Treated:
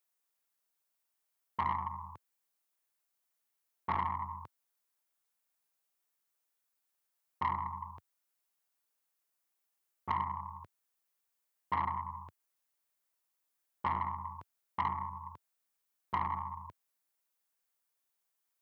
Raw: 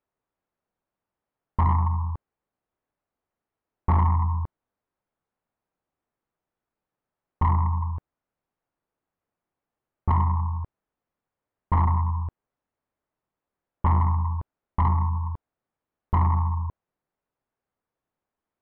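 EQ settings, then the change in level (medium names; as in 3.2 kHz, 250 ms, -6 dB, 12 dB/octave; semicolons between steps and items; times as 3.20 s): high-pass 90 Hz 24 dB/octave; tilt EQ +3.5 dB/octave; treble shelf 2 kHz +9 dB; -8.0 dB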